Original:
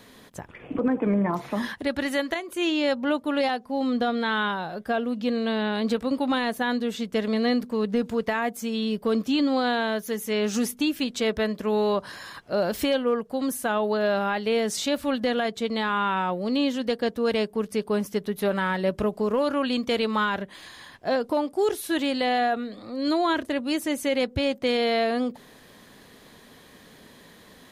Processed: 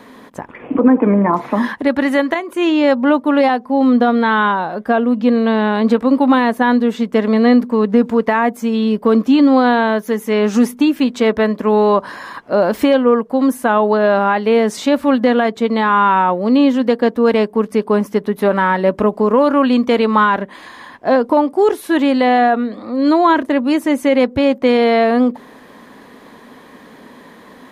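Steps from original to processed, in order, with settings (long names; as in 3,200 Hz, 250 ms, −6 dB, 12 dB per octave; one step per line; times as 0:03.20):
octave-band graphic EQ 250/500/1,000/2,000 Hz +12/+6/+12/+6 dB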